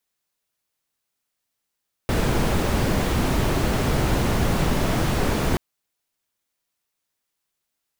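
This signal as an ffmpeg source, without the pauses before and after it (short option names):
-f lavfi -i "anoisesrc=c=brown:a=0.442:d=3.48:r=44100:seed=1"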